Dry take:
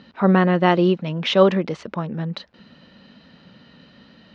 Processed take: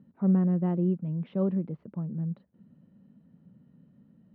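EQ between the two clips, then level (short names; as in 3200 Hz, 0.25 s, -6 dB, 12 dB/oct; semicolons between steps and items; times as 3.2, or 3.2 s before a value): band-pass 150 Hz, Q 1.4; air absorption 210 m; -4.0 dB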